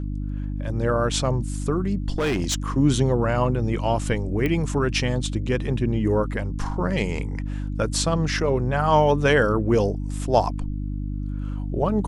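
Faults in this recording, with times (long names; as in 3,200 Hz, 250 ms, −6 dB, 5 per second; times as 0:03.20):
mains hum 50 Hz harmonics 6 −28 dBFS
0:02.14–0:02.66: clipping −19 dBFS
0:04.46: click −13 dBFS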